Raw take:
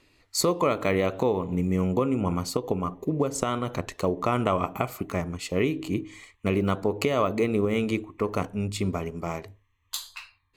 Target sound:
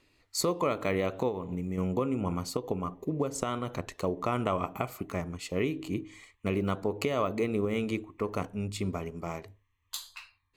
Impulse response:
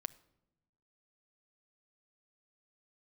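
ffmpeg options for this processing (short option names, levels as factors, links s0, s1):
-filter_complex "[0:a]asettb=1/sr,asplit=3[s0][s1][s2];[s0]atrim=end=1.284[s3];[s1]atrim=start=1.28:end=1.78,asetpts=PTS-STARTPTS,afade=t=in:d=0.004:c=qsin,afade=t=out:st=0.496:d=0.004:c=qsin,acompressor=threshold=0.0562:ratio=6[s4];[s2]atrim=start=1.776[s5];[s3][s4]acrossfade=d=0.004:c1=hsin:c2=qsin[s6];[s6][s5]acrossfade=d=0.004:c1=qsin:c2=hsin,volume=0.562"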